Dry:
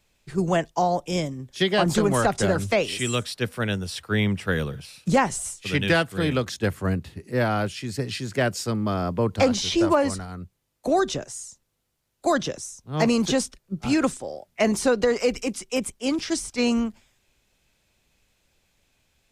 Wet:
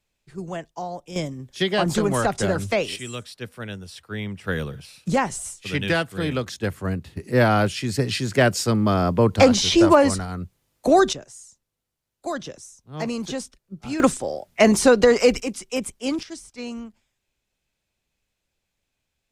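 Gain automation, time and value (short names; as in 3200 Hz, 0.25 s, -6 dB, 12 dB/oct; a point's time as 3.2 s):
-9.5 dB
from 1.16 s -0.5 dB
from 2.96 s -8 dB
from 4.44 s -1.5 dB
from 7.17 s +5.5 dB
from 11.13 s -7 dB
from 14 s +6 dB
from 15.4 s -0.5 dB
from 16.23 s -11 dB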